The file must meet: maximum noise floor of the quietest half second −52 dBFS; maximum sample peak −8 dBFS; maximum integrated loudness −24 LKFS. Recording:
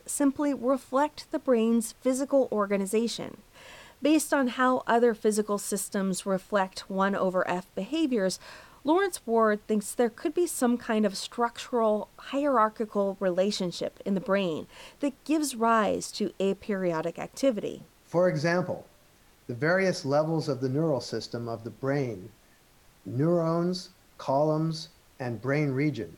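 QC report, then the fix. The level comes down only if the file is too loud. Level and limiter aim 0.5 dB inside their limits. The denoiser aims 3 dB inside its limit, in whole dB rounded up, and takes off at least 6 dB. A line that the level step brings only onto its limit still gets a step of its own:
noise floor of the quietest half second −60 dBFS: in spec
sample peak −11.5 dBFS: in spec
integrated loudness −28.0 LKFS: in spec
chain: no processing needed

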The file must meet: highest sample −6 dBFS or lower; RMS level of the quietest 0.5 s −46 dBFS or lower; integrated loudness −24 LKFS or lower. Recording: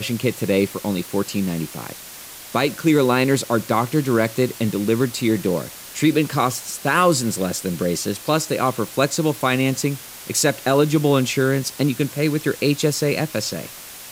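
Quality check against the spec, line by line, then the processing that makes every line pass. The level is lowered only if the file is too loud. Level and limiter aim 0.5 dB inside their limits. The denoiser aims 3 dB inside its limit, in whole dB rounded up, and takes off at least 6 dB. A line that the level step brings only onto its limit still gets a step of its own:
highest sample −5.5 dBFS: out of spec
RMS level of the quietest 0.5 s −38 dBFS: out of spec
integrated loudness −20.5 LKFS: out of spec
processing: broadband denoise 7 dB, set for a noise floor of −38 dBFS
level −4 dB

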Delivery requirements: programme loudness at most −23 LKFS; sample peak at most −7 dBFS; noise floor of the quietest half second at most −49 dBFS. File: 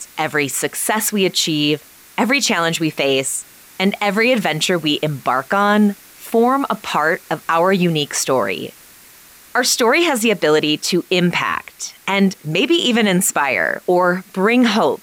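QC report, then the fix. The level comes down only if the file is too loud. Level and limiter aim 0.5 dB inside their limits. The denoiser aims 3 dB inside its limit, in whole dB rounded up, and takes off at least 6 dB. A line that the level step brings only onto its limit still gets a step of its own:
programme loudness −16.5 LKFS: out of spec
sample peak −5.5 dBFS: out of spec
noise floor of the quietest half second −44 dBFS: out of spec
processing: level −7 dB

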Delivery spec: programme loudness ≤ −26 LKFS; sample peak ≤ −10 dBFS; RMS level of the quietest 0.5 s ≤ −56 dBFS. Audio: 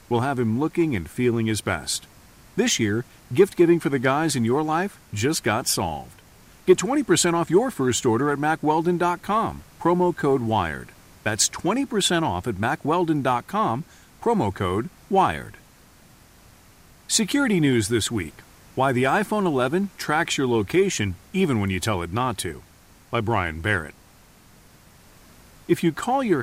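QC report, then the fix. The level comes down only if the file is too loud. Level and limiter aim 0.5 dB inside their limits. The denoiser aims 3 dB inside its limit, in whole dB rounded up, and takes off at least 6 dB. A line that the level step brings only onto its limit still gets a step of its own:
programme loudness −22.5 LKFS: out of spec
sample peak −4.0 dBFS: out of spec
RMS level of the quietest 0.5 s −52 dBFS: out of spec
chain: broadband denoise 6 dB, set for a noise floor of −52 dBFS
level −4 dB
brickwall limiter −10.5 dBFS

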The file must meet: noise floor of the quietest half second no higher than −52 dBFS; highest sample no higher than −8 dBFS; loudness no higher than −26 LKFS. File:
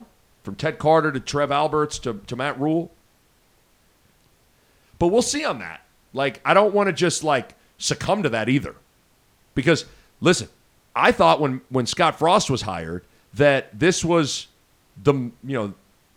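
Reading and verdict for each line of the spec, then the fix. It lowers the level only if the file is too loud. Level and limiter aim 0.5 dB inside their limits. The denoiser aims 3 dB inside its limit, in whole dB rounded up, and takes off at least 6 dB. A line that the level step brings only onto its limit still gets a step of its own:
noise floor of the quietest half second −60 dBFS: in spec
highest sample −2.5 dBFS: out of spec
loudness −21.0 LKFS: out of spec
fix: level −5.5 dB
brickwall limiter −8.5 dBFS

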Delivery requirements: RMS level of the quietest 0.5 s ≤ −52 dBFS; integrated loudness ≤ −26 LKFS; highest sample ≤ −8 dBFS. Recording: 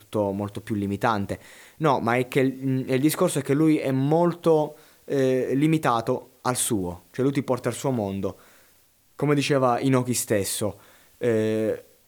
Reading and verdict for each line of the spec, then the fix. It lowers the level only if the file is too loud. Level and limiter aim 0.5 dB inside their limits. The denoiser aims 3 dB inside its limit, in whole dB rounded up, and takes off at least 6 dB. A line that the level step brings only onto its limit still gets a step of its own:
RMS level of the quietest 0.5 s −60 dBFS: in spec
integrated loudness −24.0 LKFS: out of spec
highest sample −6.5 dBFS: out of spec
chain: level −2.5 dB

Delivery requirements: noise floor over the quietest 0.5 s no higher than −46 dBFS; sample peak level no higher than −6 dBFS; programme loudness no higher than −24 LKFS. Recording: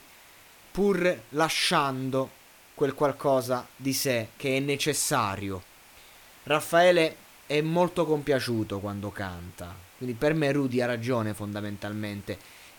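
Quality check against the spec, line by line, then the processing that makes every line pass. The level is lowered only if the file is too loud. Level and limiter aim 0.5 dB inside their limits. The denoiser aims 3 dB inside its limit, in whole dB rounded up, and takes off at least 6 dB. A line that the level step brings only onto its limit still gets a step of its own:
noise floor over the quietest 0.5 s −53 dBFS: in spec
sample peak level −10.5 dBFS: in spec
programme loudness −27.0 LKFS: in spec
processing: no processing needed

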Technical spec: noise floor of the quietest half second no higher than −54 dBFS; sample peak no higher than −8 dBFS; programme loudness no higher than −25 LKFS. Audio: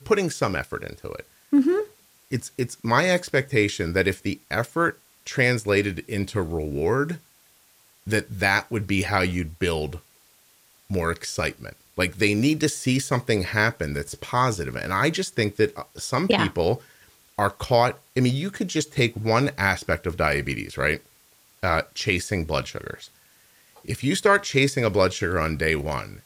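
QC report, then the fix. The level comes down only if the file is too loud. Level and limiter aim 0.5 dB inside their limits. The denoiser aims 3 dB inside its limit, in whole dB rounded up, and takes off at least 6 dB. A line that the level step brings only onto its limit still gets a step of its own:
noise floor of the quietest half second −58 dBFS: in spec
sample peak −6.0 dBFS: out of spec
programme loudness −24.0 LKFS: out of spec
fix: level −1.5 dB
brickwall limiter −8.5 dBFS

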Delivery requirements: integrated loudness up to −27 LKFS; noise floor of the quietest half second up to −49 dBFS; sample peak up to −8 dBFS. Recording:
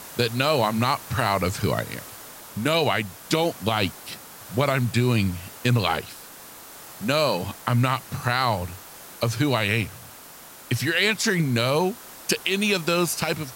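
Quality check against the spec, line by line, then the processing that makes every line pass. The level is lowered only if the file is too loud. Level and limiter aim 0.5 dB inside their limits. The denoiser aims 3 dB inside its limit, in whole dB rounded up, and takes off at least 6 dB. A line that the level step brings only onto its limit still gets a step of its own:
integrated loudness −23.5 LKFS: out of spec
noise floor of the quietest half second −44 dBFS: out of spec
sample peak −6.0 dBFS: out of spec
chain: broadband denoise 6 dB, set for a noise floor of −44 dBFS
level −4 dB

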